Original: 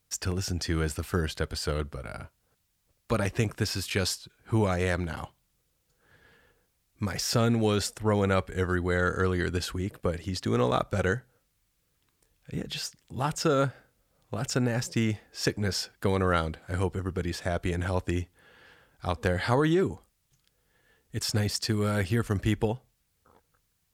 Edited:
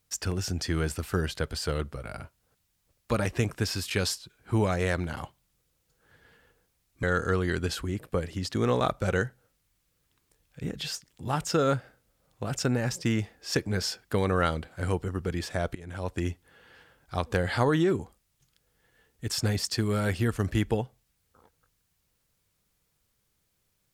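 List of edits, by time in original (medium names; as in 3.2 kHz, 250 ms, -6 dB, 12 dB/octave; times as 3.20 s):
7.03–8.94 s: delete
17.66–18.19 s: fade in, from -23 dB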